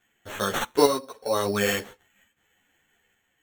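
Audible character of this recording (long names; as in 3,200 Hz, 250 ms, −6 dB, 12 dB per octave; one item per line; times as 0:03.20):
sample-and-hold tremolo
aliases and images of a low sample rate 4,900 Hz, jitter 0%
a shimmering, thickened sound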